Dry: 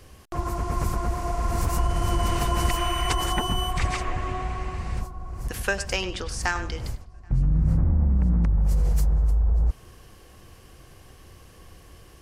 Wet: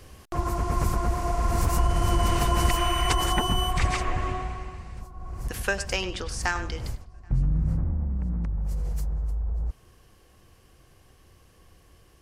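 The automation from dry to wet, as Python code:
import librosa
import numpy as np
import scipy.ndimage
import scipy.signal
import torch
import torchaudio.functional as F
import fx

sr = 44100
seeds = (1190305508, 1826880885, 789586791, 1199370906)

y = fx.gain(x, sr, db=fx.line((4.26, 1.0), (4.95, -11.0), (5.27, -1.0), (7.32, -1.0), (8.07, -7.5)))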